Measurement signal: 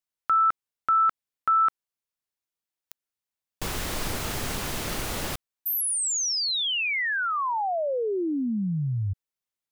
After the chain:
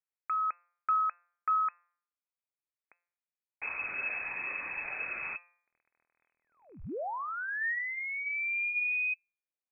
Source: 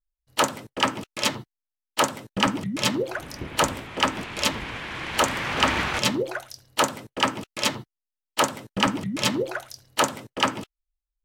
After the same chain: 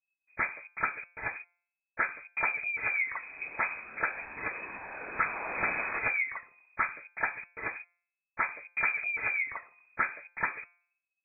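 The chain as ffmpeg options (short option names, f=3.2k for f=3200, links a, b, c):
-af "aphaser=in_gain=1:out_gain=1:delay=1.4:decay=0.33:speed=0.33:type=triangular,bandreject=f=172.8:t=h:w=4,bandreject=f=345.6:t=h:w=4,bandreject=f=518.4:t=h:w=4,bandreject=f=691.2:t=h:w=4,bandreject=f=864:t=h:w=4,bandreject=f=1.0368k:t=h:w=4,bandreject=f=1.2096k:t=h:w=4,bandreject=f=1.3824k:t=h:w=4,bandreject=f=1.5552k:t=h:w=4,bandreject=f=1.728k:t=h:w=4,bandreject=f=1.9008k:t=h:w=4,bandreject=f=2.0736k:t=h:w=4,lowpass=f=2.2k:t=q:w=0.5098,lowpass=f=2.2k:t=q:w=0.6013,lowpass=f=2.2k:t=q:w=0.9,lowpass=f=2.2k:t=q:w=2.563,afreqshift=-2600,volume=-7.5dB"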